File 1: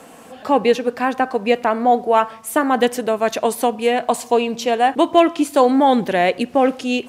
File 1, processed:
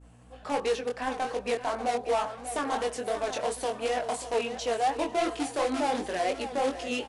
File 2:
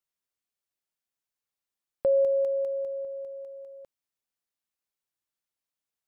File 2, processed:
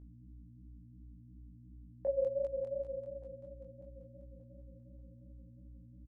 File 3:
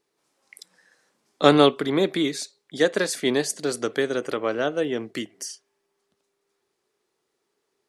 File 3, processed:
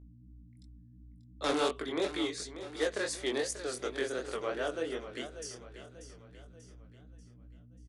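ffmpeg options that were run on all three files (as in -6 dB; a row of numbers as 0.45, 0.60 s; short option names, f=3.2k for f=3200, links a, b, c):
-filter_complex "[0:a]agate=range=-33dB:threshold=-34dB:ratio=3:detection=peak,asplit=2[a][b];[b]aeval=exprs='(mod(3.55*val(0)+1,2)-1)/3.55':c=same,volume=-9dB[c];[a][c]amix=inputs=2:normalize=0,highpass=340,asoftclip=type=hard:threshold=-11.5dB,asplit=2[d][e];[e]aecho=0:1:588|1176|1764|2352|2940:0.251|0.116|0.0532|0.0244|0.0112[f];[d][f]amix=inputs=2:normalize=0,aeval=exprs='val(0)+0.01*(sin(2*PI*60*n/s)+sin(2*PI*2*60*n/s)/2+sin(2*PI*3*60*n/s)/3+sin(2*PI*4*60*n/s)/4+sin(2*PI*5*60*n/s)/5)':c=same,flanger=delay=19:depth=5.9:speed=2.8,volume=-8dB" -ar 24000 -c:a libmp3lame -b:a 160k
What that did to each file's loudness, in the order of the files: -12.5, -11.0, -11.5 LU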